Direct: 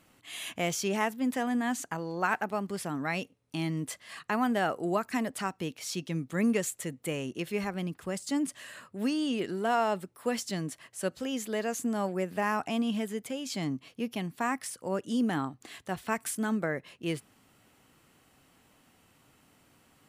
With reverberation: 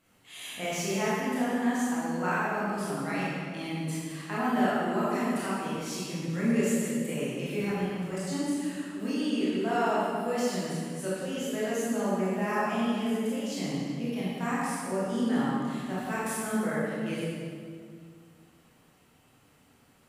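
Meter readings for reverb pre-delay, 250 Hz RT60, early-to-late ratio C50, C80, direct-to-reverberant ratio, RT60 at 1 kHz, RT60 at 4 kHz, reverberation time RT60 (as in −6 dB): 19 ms, 2.5 s, −4.0 dB, −1.5 dB, −9.0 dB, 2.0 s, 1.6 s, 2.2 s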